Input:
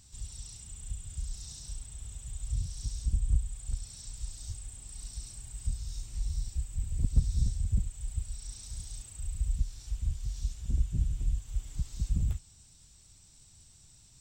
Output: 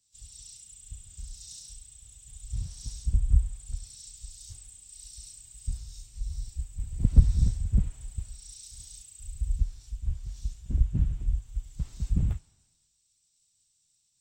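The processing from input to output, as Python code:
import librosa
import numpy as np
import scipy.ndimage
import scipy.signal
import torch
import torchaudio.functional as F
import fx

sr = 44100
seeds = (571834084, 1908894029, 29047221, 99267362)

y = fx.band_widen(x, sr, depth_pct=100)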